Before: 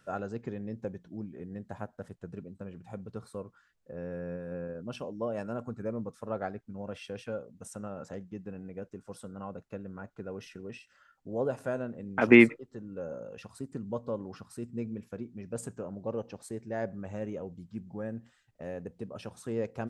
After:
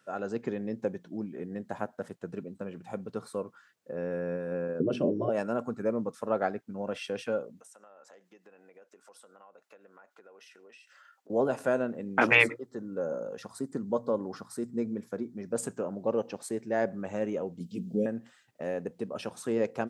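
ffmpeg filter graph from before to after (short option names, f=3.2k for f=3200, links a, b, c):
-filter_complex "[0:a]asettb=1/sr,asplit=3[a][b][c];[a]atrim=end=4.804[d];[b]atrim=start=4.8:end=5.29,asetpts=PTS-STARTPTS,afade=t=in:d=0.004:c=qsin,afade=t=out:st=0.486:d=0.004:c=qsin,lowpass=f=2.7k:p=1,lowshelf=f=600:t=q:w=3:g=13[e];[c]atrim=start=5.286[f];[d][e]acrossfade=d=0.004:c1=hsin:c2=qsin[g];[g][f]acrossfade=d=0.004:c1=qsin:c2=hsin,asettb=1/sr,asplit=3[h][i][j];[h]atrim=end=7.604[k];[i]atrim=start=7.6:end=11.3,asetpts=PTS-STARTPTS,afade=t=in:d=0.004:c=qsin,afade=t=out:st=3.696:d=0.004:c=qsin,highpass=610,acompressor=threshold=-59dB:ratio=5:attack=3.2:release=140:knee=1:detection=peak[l];[j]atrim=start=11.296[m];[k][l]acrossfade=d=0.004:c1=hsin:c2=qsin[n];[n][m]acrossfade=d=0.004:c1=qsin:c2=hsin,asettb=1/sr,asplit=3[o][p][q];[o]atrim=end=12.434[r];[p]atrim=start=12.43:end=15.57,asetpts=PTS-STARTPTS,afade=t=in:d=0.004:c=qsin,afade=t=out:st=3.136:d=0.004:c=qsin,equalizer=f=2.7k:w=3.6:g=-12,bandreject=f=60:t=h:w=6,bandreject=f=120:t=h:w=6[s];[q]atrim=start=15.566[t];[r][s]acrossfade=d=0.004:c1=hsin:c2=qsin[u];[u][t]acrossfade=d=0.004:c1=qsin:c2=hsin,asettb=1/sr,asplit=3[v][w][x];[v]atrim=end=17.604[y];[w]atrim=start=17.6:end=18.06,asetpts=PTS-STARTPTS,afade=t=in:d=0.004:c=qsin,afade=t=out:st=0.456:d=0.004:c=qsin,aecho=1:1:4.4:0.46,atrim=end_sample=20286,acontrast=40,asuperstop=centerf=1200:order=8:qfactor=0.55[z];[x]atrim=start=18.056[aa];[y][z]acrossfade=d=0.004:c1=hsin:c2=qsin[ab];[ab][aa]acrossfade=d=0.004:c1=qsin:c2=hsin,afftfilt=real='re*lt(hypot(re,im),0.355)':imag='im*lt(hypot(re,im),0.355)':win_size=1024:overlap=0.75,highpass=210,dynaudnorm=f=160:g=3:m=8.5dB,volume=-2dB"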